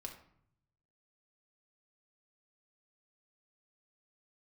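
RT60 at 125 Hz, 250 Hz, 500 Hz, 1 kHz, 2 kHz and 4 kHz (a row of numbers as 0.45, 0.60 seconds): 1.3, 0.90, 0.65, 0.65, 0.55, 0.40 seconds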